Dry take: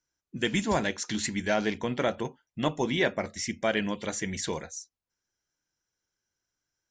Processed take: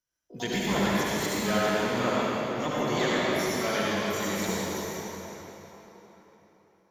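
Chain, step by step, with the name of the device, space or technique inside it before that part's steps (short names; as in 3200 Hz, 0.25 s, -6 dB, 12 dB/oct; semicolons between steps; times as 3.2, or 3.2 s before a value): shimmer-style reverb (harmoniser +12 st -6 dB; reverb RT60 4.1 s, pre-delay 61 ms, DRR -7 dB); gain -6.5 dB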